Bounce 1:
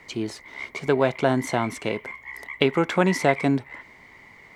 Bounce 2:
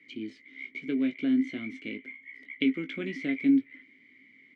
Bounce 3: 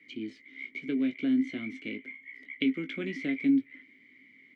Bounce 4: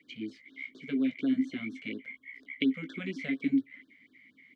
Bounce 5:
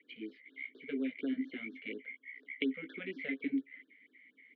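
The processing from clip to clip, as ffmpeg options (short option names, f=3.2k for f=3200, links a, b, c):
-filter_complex "[0:a]acrossover=split=7400[a][b];[b]acompressor=threshold=-54dB:ratio=4:attack=1:release=60[c];[a][c]amix=inputs=2:normalize=0,asplit=3[d][e][f];[d]bandpass=f=270:t=q:w=8,volume=0dB[g];[e]bandpass=f=2.29k:t=q:w=8,volume=-6dB[h];[f]bandpass=f=3.01k:t=q:w=8,volume=-9dB[i];[g][h][i]amix=inputs=3:normalize=0,asplit=2[j][k];[k]adelay=19,volume=-8dB[l];[j][l]amix=inputs=2:normalize=0,volume=1.5dB"
-filter_complex "[0:a]acrossover=split=280|3000[a][b][c];[b]acompressor=threshold=-33dB:ratio=2[d];[a][d][c]amix=inputs=3:normalize=0"
-af "afftfilt=real='re*(1-between(b*sr/1024,300*pow(2500/300,0.5+0.5*sin(2*PI*4.2*pts/sr))/1.41,300*pow(2500/300,0.5+0.5*sin(2*PI*4.2*pts/sr))*1.41))':imag='im*(1-between(b*sr/1024,300*pow(2500/300,0.5+0.5*sin(2*PI*4.2*pts/sr))/1.41,300*pow(2500/300,0.5+0.5*sin(2*PI*4.2*pts/sr))*1.41))':win_size=1024:overlap=0.75"
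-af "highpass=310,equalizer=f=450:t=q:w=4:g=8,equalizer=f=700:t=q:w=4:g=-4,equalizer=f=1.1k:t=q:w=4:g=-8,equalizer=f=1.9k:t=q:w=4:g=3,lowpass=f=3.3k:w=0.5412,lowpass=f=3.3k:w=1.3066,volume=-3.5dB"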